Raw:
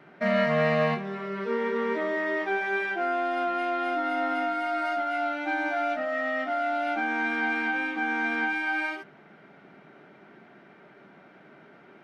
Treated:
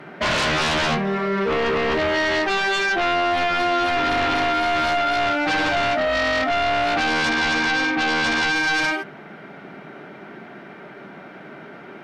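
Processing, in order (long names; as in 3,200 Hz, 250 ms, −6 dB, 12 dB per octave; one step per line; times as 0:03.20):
0:07.29–0:08.54: low-pass filter 2,700 Hz → 3,800 Hz
sine wavefolder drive 14 dB, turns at −12.5 dBFS
level −5 dB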